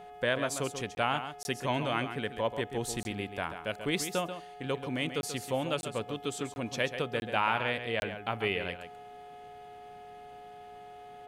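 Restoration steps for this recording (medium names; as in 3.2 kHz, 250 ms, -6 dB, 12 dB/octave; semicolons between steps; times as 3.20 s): de-hum 421.1 Hz, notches 8; band-stop 720 Hz, Q 30; interpolate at 0.95/1.43/3.03/5.21/5.81/6.54/7.20/8.00 s, 21 ms; inverse comb 136 ms -9.5 dB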